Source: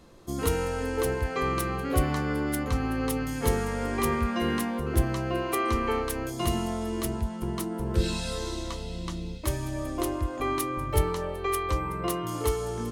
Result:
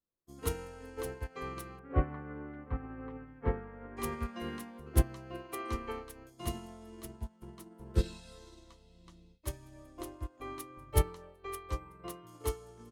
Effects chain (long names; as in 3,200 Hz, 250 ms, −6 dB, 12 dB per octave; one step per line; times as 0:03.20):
0:01.79–0:03.97: low-pass filter 2,000 Hz 24 dB per octave
expander for the loud parts 2.5 to 1, over −47 dBFS